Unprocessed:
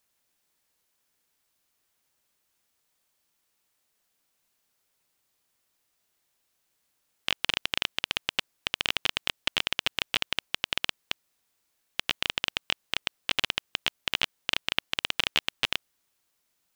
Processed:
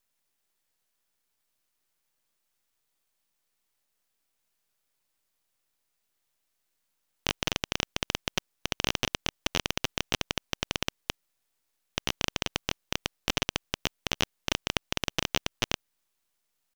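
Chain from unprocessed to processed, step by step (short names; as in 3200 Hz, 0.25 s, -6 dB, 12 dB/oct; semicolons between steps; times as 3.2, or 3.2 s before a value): half-wave rectifier; tempo 1×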